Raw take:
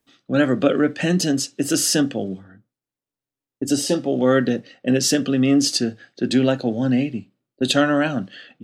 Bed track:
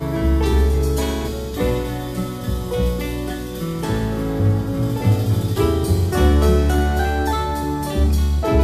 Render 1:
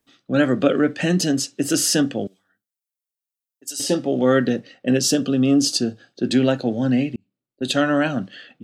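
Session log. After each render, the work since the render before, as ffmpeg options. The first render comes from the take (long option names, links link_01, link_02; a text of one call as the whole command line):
ffmpeg -i in.wav -filter_complex "[0:a]asettb=1/sr,asplit=3[link_01][link_02][link_03];[link_01]atrim=end=2.274[link_04];[link_02]atrim=start=2.27:end=3.8,asetpts=PTS-STARTPTS,afade=type=in:duration=0.004:curve=qsin,afade=type=out:start_time=1.526:duration=0.004:curve=qsin,aderivative[link_05];[link_03]atrim=start=3.796[link_06];[link_04][link_05]acrossfade=duration=0.004:curve1=hsin:curve2=qsin[link_07];[link_07][link_06]acrossfade=duration=0.004:curve1=qsin:curve2=hsin,asettb=1/sr,asplit=3[link_08][link_09][link_10];[link_08]atrim=end=5.004[link_11];[link_09]atrim=start=5:end=6.26,asetpts=PTS-STARTPTS,afade=type=in:duration=0.004:curve=qsin,afade=type=out:start_time=1.256:duration=0.004:curve=qsin,equalizer=frequency=2000:width_type=o:width=0.4:gain=-14.5[link_12];[link_10]atrim=start=6.256[link_13];[link_11][link_12]acrossfade=duration=0.004:curve1=hsin:curve2=qsin[link_14];[link_14][link_13]acrossfade=duration=0.004:curve1=qsin:curve2=hsin,asplit=2[link_15][link_16];[link_15]atrim=end=7.16,asetpts=PTS-STARTPTS,afade=type=out:start_time=7.156:duration=0.004:curve=hsin[link_17];[link_16]atrim=start=7.16,asetpts=PTS-STARTPTS,afade=type=in:duration=0.8[link_18];[link_17][link_18]concat=n=2:v=0:a=1" out.wav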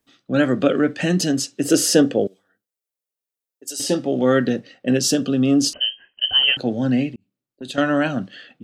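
ffmpeg -i in.wav -filter_complex "[0:a]asettb=1/sr,asplit=3[link_01][link_02][link_03];[link_01]atrim=end=1.654[link_04];[link_02]atrim=start=1.65:end=3.78,asetpts=PTS-STARTPTS,afade=type=in:duration=0.004:curve=qsin,afade=type=out:start_time=2.126:duration=0.004:curve=qsin,equalizer=frequency=460:width=1.5:gain=10[link_05];[link_03]atrim=start=3.776[link_06];[link_04][link_05]acrossfade=duration=0.004:curve1=hsin:curve2=qsin[link_07];[link_07][link_06]acrossfade=duration=0.004:curve1=qsin:curve2=hsin,asettb=1/sr,asplit=3[link_08][link_09][link_10];[link_08]atrim=end=5.734[link_11];[link_09]atrim=start=5.73:end=6.57,asetpts=PTS-STARTPTS,afade=type=in:duration=0.004:curve=qsin,afade=type=out:start_time=0.836:duration=0.004:curve=qsin,lowpass=frequency=2800:width_type=q:width=0.5098,lowpass=frequency=2800:width_type=q:width=0.6013,lowpass=frequency=2800:width_type=q:width=0.9,lowpass=frequency=2800:width_type=q:width=2.563,afreqshift=-3300[link_12];[link_10]atrim=start=6.566[link_13];[link_11][link_12]acrossfade=duration=0.004:curve1=hsin:curve2=qsin[link_14];[link_14][link_13]acrossfade=duration=0.004:curve1=qsin:curve2=hsin,asettb=1/sr,asplit=3[link_15][link_16][link_17];[link_15]atrim=end=7.104[link_18];[link_16]atrim=start=7.1:end=7.78,asetpts=PTS-STARTPTS,afade=type=in:duration=0.004:curve=qsin,afade=type=out:start_time=0.676:duration=0.004:curve=qsin,acompressor=threshold=-35dB:ratio=2:attack=3.2:release=140:knee=1:detection=peak[link_19];[link_17]atrim=start=7.776[link_20];[link_18][link_19]acrossfade=duration=0.004:curve1=hsin:curve2=qsin[link_21];[link_21][link_20]acrossfade=duration=0.004:curve1=qsin:curve2=hsin" out.wav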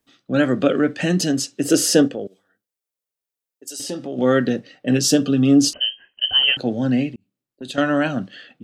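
ffmpeg -i in.wav -filter_complex "[0:a]asplit=3[link_01][link_02][link_03];[link_01]afade=type=out:start_time=2.07:duration=0.02[link_04];[link_02]acompressor=threshold=-30dB:ratio=2:attack=3.2:release=140:knee=1:detection=peak,afade=type=in:start_time=2.07:duration=0.02,afade=type=out:start_time=4.17:duration=0.02[link_05];[link_03]afade=type=in:start_time=4.17:duration=0.02[link_06];[link_04][link_05][link_06]amix=inputs=3:normalize=0,asettb=1/sr,asplit=3[link_07][link_08][link_09];[link_07]atrim=end=4.734[link_10];[link_08]atrim=start=4.73:end=5.71,asetpts=PTS-STARTPTS,afade=type=in:duration=0.004:curve=qsin,afade=type=out:start_time=0.976:duration=0.004:curve=qsin,aecho=1:1:6.7:0.56,atrim=end_sample=43218[link_11];[link_09]atrim=start=5.706[link_12];[link_10][link_11]acrossfade=duration=0.004:curve1=hsin:curve2=qsin[link_13];[link_13][link_12]acrossfade=duration=0.004:curve1=qsin:curve2=hsin" out.wav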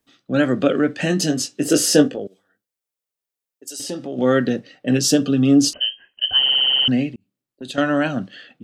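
ffmpeg -i in.wav -filter_complex "[0:a]asettb=1/sr,asplit=3[link_01][link_02][link_03];[link_01]atrim=end=1.004[link_04];[link_02]atrim=start=1:end=2.19,asetpts=PTS-STARTPTS,afade=type=in:duration=0.004:curve=qsin,afade=type=out:start_time=1.186:duration=0.004:curve=qsin,asplit=2[link_05][link_06];[link_06]adelay=20,volume=-7dB[link_07];[link_05][link_07]amix=inputs=2:normalize=0,atrim=end_sample=52479[link_08];[link_03]atrim=start=2.186[link_09];[link_04][link_08]acrossfade=duration=0.004:curve1=hsin:curve2=qsin[link_10];[link_10][link_09]acrossfade=duration=0.004:curve1=qsin:curve2=hsin,asplit=9[link_11][link_12][link_13][link_14][link_15][link_16][link_17][link_18][link_19];[link_11]atrim=end=6.462[link_20];[link_12]atrim=start=6.398:end=6.462[link_21];[link_13]atrim=start=6.398:end=6.462[link_22];[link_14]atrim=start=6.398:end=6.462[link_23];[link_15]atrim=start=6.398:end=6.462[link_24];[link_16]atrim=start=6.398:end=6.462[link_25];[link_17]atrim=start=6.398:end=6.462[link_26];[link_18]atrim=start=6.398:end=6.462[link_27];[link_19]atrim=start=6.878[link_28];[link_20][link_21]acrossfade=duration=0.004:curve1=hsin:curve2=hsin[link_29];[link_29][link_22]acrossfade=duration=0.004:curve1=hsin:curve2=hsin[link_30];[link_30][link_23]acrossfade=duration=0.004:curve1=hsin:curve2=hsin[link_31];[link_31][link_24]acrossfade=duration=0.004:curve1=hsin:curve2=hsin[link_32];[link_32][link_25]acrossfade=duration=0.004:curve1=hsin:curve2=hsin[link_33];[link_33][link_26]acrossfade=duration=0.004:curve1=hsin:curve2=hsin[link_34];[link_34][link_27]acrossfade=duration=0.004:curve1=hsin:curve2=hsin[link_35];[link_35][link_28]acrossfade=duration=0.004:curve1=hsin:curve2=hsin" out.wav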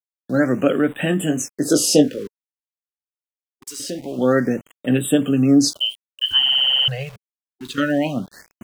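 ffmpeg -i in.wav -af "aeval=exprs='val(0)*gte(abs(val(0)),0.0133)':channel_layout=same,afftfilt=real='re*(1-between(b*sr/1024,280*pow(5500/280,0.5+0.5*sin(2*PI*0.25*pts/sr))/1.41,280*pow(5500/280,0.5+0.5*sin(2*PI*0.25*pts/sr))*1.41))':imag='im*(1-between(b*sr/1024,280*pow(5500/280,0.5+0.5*sin(2*PI*0.25*pts/sr))/1.41,280*pow(5500/280,0.5+0.5*sin(2*PI*0.25*pts/sr))*1.41))':win_size=1024:overlap=0.75" out.wav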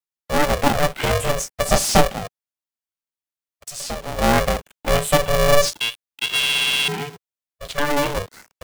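ffmpeg -i in.wav -filter_complex "[0:a]acrossover=split=170|1200|1800[link_01][link_02][link_03][link_04];[link_04]asoftclip=type=hard:threshold=-19.5dB[link_05];[link_01][link_02][link_03][link_05]amix=inputs=4:normalize=0,aeval=exprs='val(0)*sgn(sin(2*PI*290*n/s))':channel_layout=same" out.wav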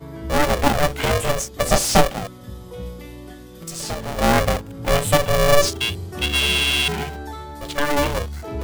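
ffmpeg -i in.wav -i bed.wav -filter_complex "[1:a]volume=-13dB[link_01];[0:a][link_01]amix=inputs=2:normalize=0" out.wav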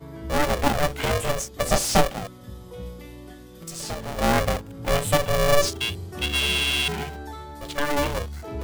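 ffmpeg -i in.wav -af "volume=-4dB" out.wav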